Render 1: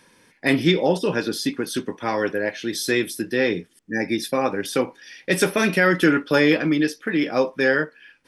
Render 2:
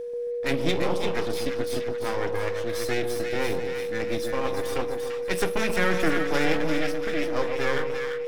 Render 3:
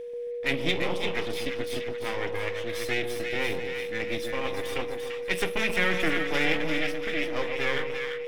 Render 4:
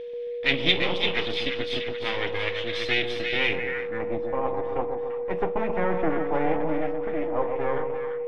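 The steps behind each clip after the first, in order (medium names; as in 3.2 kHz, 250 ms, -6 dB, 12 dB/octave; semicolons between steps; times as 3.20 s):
half-wave rectifier; whistle 480 Hz -27 dBFS; two-band feedback delay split 1.1 kHz, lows 135 ms, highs 342 ms, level -5.5 dB; trim -4 dB
high-order bell 2.6 kHz +8 dB 1.1 oct; trim -4 dB
low-pass sweep 3.6 kHz -> 880 Hz, 3.36–4.10 s; trim +1.5 dB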